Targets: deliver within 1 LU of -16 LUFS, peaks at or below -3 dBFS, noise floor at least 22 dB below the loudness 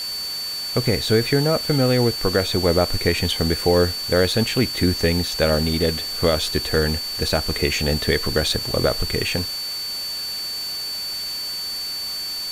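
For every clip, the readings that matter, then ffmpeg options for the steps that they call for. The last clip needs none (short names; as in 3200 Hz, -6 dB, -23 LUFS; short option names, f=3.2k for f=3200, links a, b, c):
steady tone 4500 Hz; tone level -26 dBFS; noise floor -28 dBFS; noise floor target -43 dBFS; loudness -21.0 LUFS; peak -4.5 dBFS; loudness target -16.0 LUFS
-> -af "bandreject=f=4.5k:w=30"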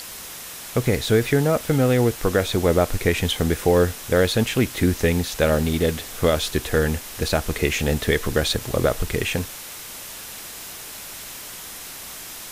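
steady tone none; noise floor -37 dBFS; noise floor target -44 dBFS
-> -af "afftdn=nr=7:nf=-37"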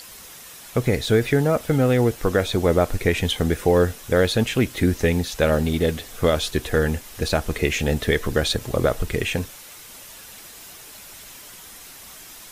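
noise floor -42 dBFS; noise floor target -44 dBFS
-> -af "afftdn=nr=6:nf=-42"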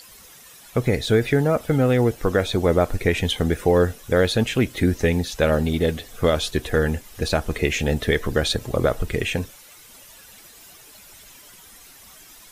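noise floor -47 dBFS; loudness -21.5 LUFS; peak -5.5 dBFS; loudness target -16.0 LUFS
-> -af "volume=5.5dB,alimiter=limit=-3dB:level=0:latency=1"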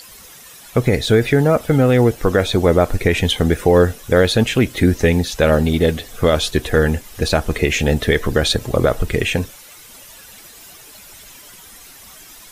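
loudness -16.5 LUFS; peak -3.0 dBFS; noise floor -42 dBFS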